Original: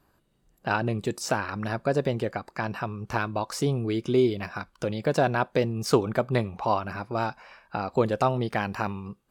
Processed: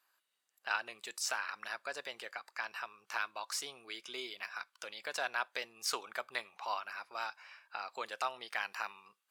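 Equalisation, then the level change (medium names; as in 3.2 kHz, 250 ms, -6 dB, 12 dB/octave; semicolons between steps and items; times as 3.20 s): high-pass 1.5 kHz 12 dB/octave; -2.5 dB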